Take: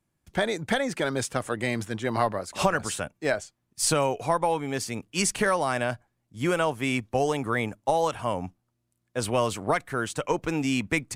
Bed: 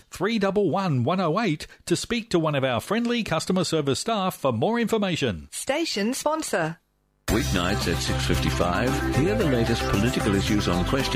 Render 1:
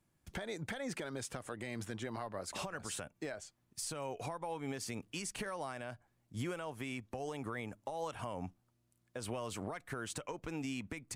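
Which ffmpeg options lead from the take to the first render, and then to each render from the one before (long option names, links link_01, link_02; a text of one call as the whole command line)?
ffmpeg -i in.wav -af "acompressor=threshold=-33dB:ratio=12,alimiter=level_in=6dB:limit=-24dB:level=0:latency=1:release=190,volume=-6dB" out.wav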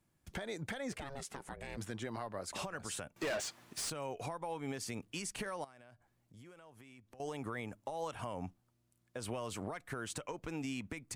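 ffmpeg -i in.wav -filter_complex "[0:a]asplit=3[link_01][link_02][link_03];[link_01]afade=type=out:start_time=0.91:duration=0.02[link_04];[link_02]aeval=exprs='val(0)*sin(2*PI*280*n/s)':channel_layout=same,afade=type=in:start_time=0.91:duration=0.02,afade=type=out:start_time=1.76:duration=0.02[link_05];[link_03]afade=type=in:start_time=1.76:duration=0.02[link_06];[link_04][link_05][link_06]amix=inputs=3:normalize=0,asettb=1/sr,asplit=3[link_07][link_08][link_09];[link_07]atrim=end=3.164[link_10];[link_08]atrim=start=3.16:end=3.9,asetpts=PTS-STARTPTS,afade=type=in:duration=0.004:curve=qsin,afade=type=out:start_time=0.736:duration=0.004:curve=qsin,asplit=2[link_11][link_12];[link_12]highpass=frequency=720:poles=1,volume=31dB,asoftclip=type=tanh:threshold=-29.5dB[link_13];[link_11][link_13]amix=inputs=2:normalize=0,lowpass=frequency=4800:poles=1,volume=-6dB[link_14];[link_09]atrim=start=3.896[link_15];[link_10][link_14]acrossfade=duration=0.004:curve1=hsin:curve2=qsin[link_16];[link_16][link_15]acrossfade=duration=0.004:curve1=qsin:curve2=hsin,asettb=1/sr,asplit=3[link_17][link_18][link_19];[link_17]atrim=end=5.644[link_20];[link_18]atrim=start=5.64:end=7.2,asetpts=PTS-STARTPTS,afade=type=in:duration=0.004:curve=qsin,afade=type=out:start_time=1.556:duration=0.004:curve=qsin,acompressor=threshold=-59dB:ratio=3:attack=3.2:release=140:knee=1:detection=peak[link_21];[link_19]atrim=start=7.196[link_22];[link_20][link_21]acrossfade=duration=0.004:curve1=hsin:curve2=qsin[link_23];[link_23][link_22]acrossfade=duration=0.004:curve1=qsin:curve2=hsin" out.wav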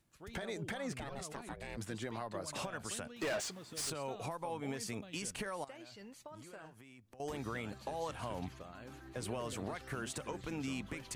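ffmpeg -i in.wav -i bed.wav -filter_complex "[1:a]volume=-28dB[link_01];[0:a][link_01]amix=inputs=2:normalize=0" out.wav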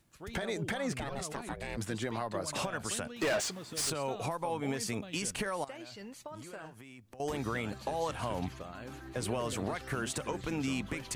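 ffmpeg -i in.wav -af "volume=6dB" out.wav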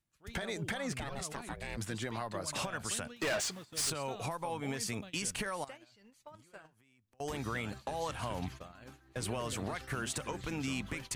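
ffmpeg -i in.wav -af "agate=range=-15dB:threshold=-43dB:ratio=16:detection=peak,equalizer=frequency=410:width_type=o:width=2.5:gain=-4.5" out.wav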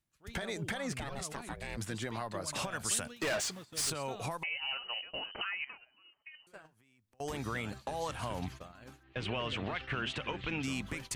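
ffmpeg -i in.wav -filter_complex "[0:a]asettb=1/sr,asplit=3[link_01][link_02][link_03];[link_01]atrim=end=2.714[link_04];[link_02]atrim=start=2.71:end=3.19,asetpts=PTS-STARTPTS,afade=type=in:duration=0.004:curve=qsin,afade=type=out:start_time=0.476:duration=0.004:curve=qsin,highshelf=frequency=4700:gain=7[link_05];[link_03]atrim=start=3.186[link_06];[link_04][link_05]acrossfade=duration=0.004:curve1=hsin:curve2=qsin[link_07];[link_07][link_06]acrossfade=duration=0.004:curve1=qsin:curve2=hsin,asettb=1/sr,asplit=3[link_08][link_09][link_10];[link_08]atrim=end=4.434[link_11];[link_09]atrim=start=4.43:end=6.47,asetpts=PTS-STARTPTS,afade=type=in:duration=0.004:curve=qsin,afade=type=out:start_time=2.036:duration=0.004:curve=qsin,lowpass=frequency=2600:width_type=q:width=0.5098,lowpass=frequency=2600:width_type=q:width=0.6013,lowpass=frequency=2600:width_type=q:width=0.9,lowpass=frequency=2600:width_type=q:width=2.563,afreqshift=-3100[link_12];[link_10]atrim=start=6.466[link_13];[link_11][link_12]acrossfade=duration=0.004:curve1=hsin:curve2=qsin[link_14];[link_14][link_13]acrossfade=duration=0.004:curve1=qsin:curve2=hsin,asettb=1/sr,asplit=3[link_15][link_16][link_17];[link_15]atrim=end=9.034[link_18];[link_16]atrim=start=9.03:end=10.63,asetpts=PTS-STARTPTS,afade=type=in:duration=0.004:curve=qsin,afade=type=out:start_time=1.596:duration=0.004:curve=qsin,lowpass=frequency=2900:width_type=q:width=2.9[link_19];[link_17]atrim=start=10.626[link_20];[link_18][link_19]acrossfade=duration=0.004:curve1=hsin:curve2=qsin[link_21];[link_21][link_20]acrossfade=duration=0.004:curve1=qsin:curve2=hsin" out.wav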